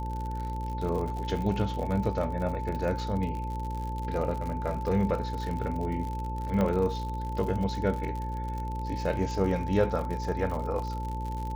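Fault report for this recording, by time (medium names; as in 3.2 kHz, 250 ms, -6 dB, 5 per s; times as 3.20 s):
buzz 60 Hz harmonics 9 -34 dBFS
crackle 69 per s -34 dBFS
whine 880 Hz -36 dBFS
6.61 s: dropout 2.1 ms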